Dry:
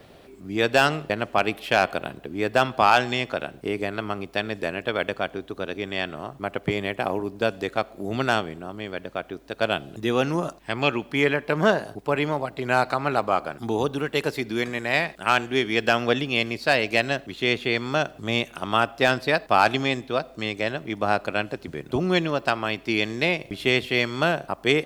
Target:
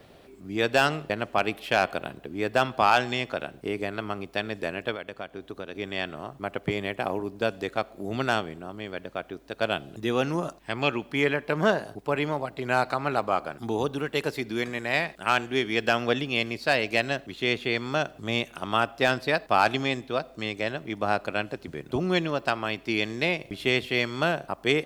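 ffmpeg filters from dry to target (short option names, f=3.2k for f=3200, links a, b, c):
-filter_complex "[0:a]asplit=3[a][b][c];[a]afade=t=out:st=4.94:d=0.02[d];[b]acompressor=threshold=-29dB:ratio=6,afade=t=in:st=4.94:d=0.02,afade=t=out:st=5.74:d=0.02[e];[c]afade=t=in:st=5.74:d=0.02[f];[d][e][f]amix=inputs=3:normalize=0,volume=-3dB"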